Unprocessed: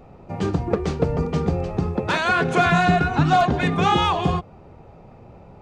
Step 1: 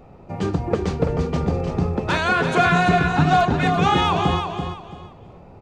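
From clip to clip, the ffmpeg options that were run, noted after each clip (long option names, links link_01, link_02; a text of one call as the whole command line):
ffmpeg -i in.wav -af "aecho=1:1:336|672|1008:0.473|0.128|0.0345" out.wav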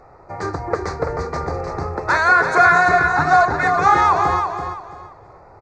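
ffmpeg -i in.wav -af "firequalizer=gain_entry='entry(110,0);entry(200,-11);entry(330,2);entry(840,9);entry(1200,12);entry(2000,11);entry(3000,-17);entry(4200,7);entry(6400,7);entry(11000,-3)':delay=0.05:min_phase=1,volume=-4dB" out.wav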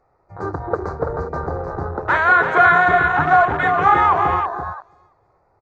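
ffmpeg -i in.wav -af "afwtdn=0.0631" out.wav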